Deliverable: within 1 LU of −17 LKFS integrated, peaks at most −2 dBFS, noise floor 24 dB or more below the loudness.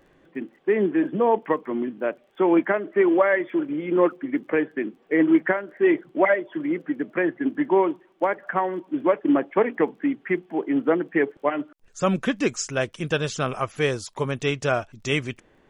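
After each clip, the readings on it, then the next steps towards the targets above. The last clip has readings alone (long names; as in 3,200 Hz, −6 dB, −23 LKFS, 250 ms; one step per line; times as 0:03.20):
crackle rate 21 per second; integrated loudness −24.0 LKFS; sample peak −6.5 dBFS; target loudness −17.0 LKFS
→ click removal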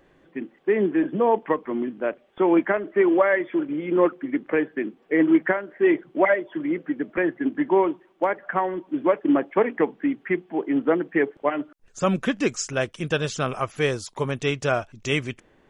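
crackle rate 0.064 per second; integrated loudness −24.0 LKFS; sample peak −6.5 dBFS; target loudness −17.0 LKFS
→ level +7 dB
brickwall limiter −2 dBFS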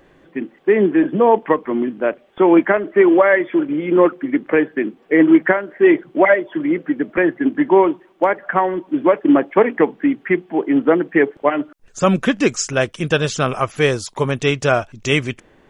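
integrated loudness −17.0 LKFS; sample peak −2.0 dBFS; background noise floor −52 dBFS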